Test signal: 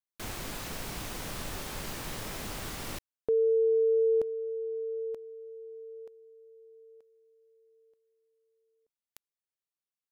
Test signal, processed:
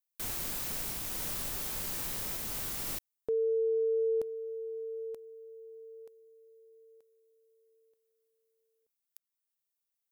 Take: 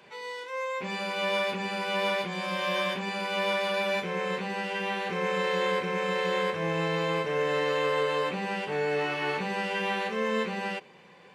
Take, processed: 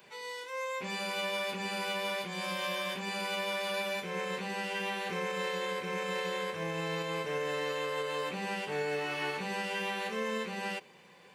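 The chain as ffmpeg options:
-af "aemphasis=mode=production:type=50kf,alimiter=limit=-20.5dB:level=0:latency=1:release=248,volume=-4.5dB"

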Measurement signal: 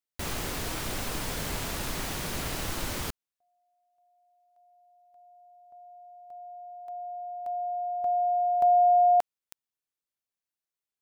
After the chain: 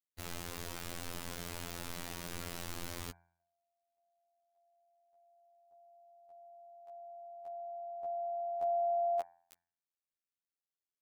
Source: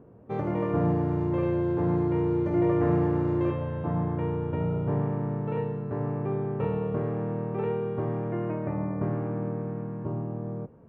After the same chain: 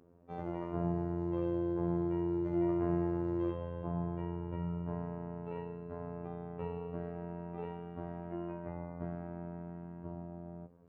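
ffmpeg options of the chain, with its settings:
-af "bandreject=f=95.91:t=h:w=4,bandreject=f=191.82:t=h:w=4,bandreject=f=287.73:t=h:w=4,bandreject=f=383.64:t=h:w=4,bandreject=f=479.55:t=h:w=4,bandreject=f=575.46:t=h:w=4,bandreject=f=671.37:t=h:w=4,bandreject=f=767.28:t=h:w=4,bandreject=f=863.19:t=h:w=4,bandreject=f=959.1:t=h:w=4,bandreject=f=1.05501k:t=h:w=4,bandreject=f=1.15092k:t=h:w=4,bandreject=f=1.24683k:t=h:w=4,bandreject=f=1.34274k:t=h:w=4,bandreject=f=1.43865k:t=h:w=4,bandreject=f=1.53456k:t=h:w=4,bandreject=f=1.63047k:t=h:w=4,bandreject=f=1.72638k:t=h:w=4,bandreject=f=1.82229k:t=h:w=4,bandreject=f=1.9182k:t=h:w=4,bandreject=f=2.01411k:t=h:w=4,bandreject=f=2.11002k:t=h:w=4,bandreject=f=2.20593k:t=h:w=4,bandreject=f=2.30184k:t=h:w=4,afftfilt=real='hypot(re,im)*cos(PI*b)':imag='0':win_size=2048:overlap=0.75,volume=-6.5dB"

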